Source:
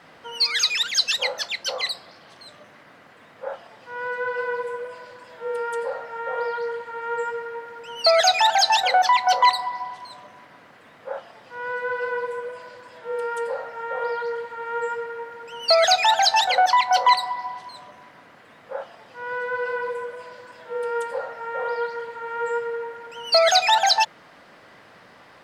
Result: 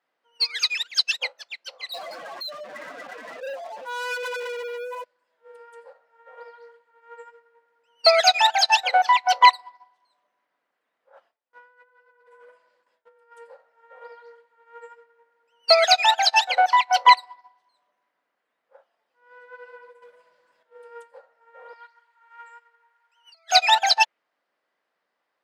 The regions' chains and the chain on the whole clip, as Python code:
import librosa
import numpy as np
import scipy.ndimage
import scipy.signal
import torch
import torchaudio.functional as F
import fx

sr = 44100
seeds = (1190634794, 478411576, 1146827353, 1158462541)

y = fx.chain(x, sr, fx.spec_expand(power=3.2),
    fx.leveller(passes=5),
    fx.env_flatten(amount_pct=70), at=(1.92, 5.04))
y = fx.chain(y, sr, fx.gate_hold(open_db=-34.0, close_db=-37.0, hold_ms=71.0, range_db=-21, attack_ms=1.4, release_ms=100.0),
    fx.dynamic_eq(hz=1300.0, q=0.97, threshold_db=-41.0, ratio=4.0, max_db=4),
    fx.over_compress(threshold_db=-31.0, ratio=-1.0), at=(11.1, 13.32))
y = fx.chain(y, sr, fx.peak_eq(hz=150.0, db=14.0, octaves=0.3),
    fx.leveller(passes=2), at=(20.02, 20.63))
y = fx.chain(y, sr, fx.over_compress(threshold_db=-24.0, ratio=-1.0),
    fx.highpass(hz=820.0, slope=24), at=(21.73, 23.51))
y = scipy.signal.sosfilt(scipy.signal.butter(2, 340.0, 'highpass', fs=sr, output='sos'), y)
y = fx.dynamic_eq(y, sr, hz=2500.0, q=2.9, threshold_db=-40.0, ratio=4.0, max_db=6)
y = fx.upward_expand(y, sr, threshold_db=-34.0, expansion=2.5)
y = F.gain(torch.from_numpy(y), 4.0).numpy()